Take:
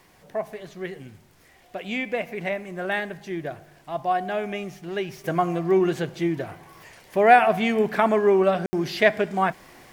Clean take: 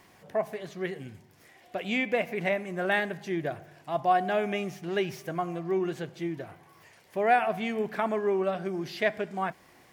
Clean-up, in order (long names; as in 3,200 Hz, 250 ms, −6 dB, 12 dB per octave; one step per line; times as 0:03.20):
ambience match 0:08.66–0:08.73
downward expander −44 dBFS, range −21 dB
level 0 dB, from 0:05.24 −8.5 dB